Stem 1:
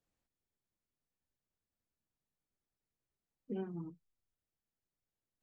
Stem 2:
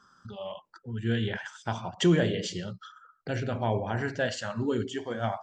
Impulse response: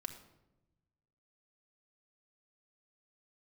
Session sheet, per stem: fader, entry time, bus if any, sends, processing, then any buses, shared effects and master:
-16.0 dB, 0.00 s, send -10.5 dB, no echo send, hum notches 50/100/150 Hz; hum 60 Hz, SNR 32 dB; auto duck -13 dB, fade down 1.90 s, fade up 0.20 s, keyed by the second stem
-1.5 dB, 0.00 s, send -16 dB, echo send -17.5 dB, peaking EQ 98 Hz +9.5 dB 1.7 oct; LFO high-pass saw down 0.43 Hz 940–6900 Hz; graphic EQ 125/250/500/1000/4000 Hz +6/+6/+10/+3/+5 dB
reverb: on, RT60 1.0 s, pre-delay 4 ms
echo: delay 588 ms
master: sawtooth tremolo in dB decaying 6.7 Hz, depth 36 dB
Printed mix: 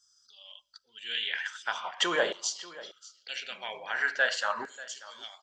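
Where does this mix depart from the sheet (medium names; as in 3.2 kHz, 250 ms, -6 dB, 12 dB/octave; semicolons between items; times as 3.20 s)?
stem 2: missing peaking EQ 98 Hz +9.5 dB 1.7 oct; master: missing sawtooth tremolo in dB decaying 6.7 Hz, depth 36 dB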